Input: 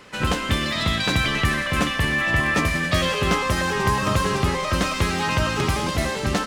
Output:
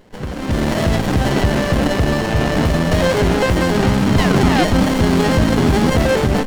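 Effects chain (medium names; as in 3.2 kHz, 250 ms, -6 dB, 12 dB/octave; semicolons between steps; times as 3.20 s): 3.69–5.90 s: graphic EQ 250/500/1000/2000/4000/8000 Hz +11/-10/+5/-5/+10/-4 dB; peak limiter -16.5 dBFS, peak gain reduction 11 dB; level rider gain up to 13.5 dB; 4.18–4.64 s: painted sound fall 680–2100 Hz -11 dBFS; sliding maximum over 33 samples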